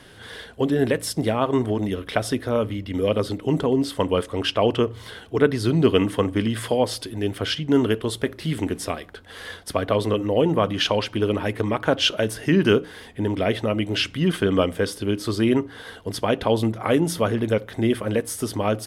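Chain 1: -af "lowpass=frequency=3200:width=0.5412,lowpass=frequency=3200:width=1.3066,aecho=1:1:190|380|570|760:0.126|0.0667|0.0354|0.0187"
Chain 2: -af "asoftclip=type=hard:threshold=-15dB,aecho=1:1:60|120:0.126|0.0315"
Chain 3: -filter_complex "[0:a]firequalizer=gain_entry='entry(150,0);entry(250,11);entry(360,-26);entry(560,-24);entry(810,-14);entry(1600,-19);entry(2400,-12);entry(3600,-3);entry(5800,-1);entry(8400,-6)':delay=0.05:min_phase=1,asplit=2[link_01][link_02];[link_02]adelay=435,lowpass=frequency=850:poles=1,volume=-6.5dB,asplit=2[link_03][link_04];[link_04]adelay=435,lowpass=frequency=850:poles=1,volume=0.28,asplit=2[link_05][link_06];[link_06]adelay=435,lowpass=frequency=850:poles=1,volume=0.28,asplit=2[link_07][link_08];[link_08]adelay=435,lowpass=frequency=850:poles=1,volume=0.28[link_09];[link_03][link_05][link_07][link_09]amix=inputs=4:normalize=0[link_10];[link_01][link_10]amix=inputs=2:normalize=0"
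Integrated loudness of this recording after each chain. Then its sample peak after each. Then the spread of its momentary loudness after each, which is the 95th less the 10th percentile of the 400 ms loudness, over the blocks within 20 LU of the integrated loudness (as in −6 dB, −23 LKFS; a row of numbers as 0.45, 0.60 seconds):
−23.0, −24.0, −22.0 LKFS; −3.5, −13.5, −5.0 dBFS; 8, 7, 7 LU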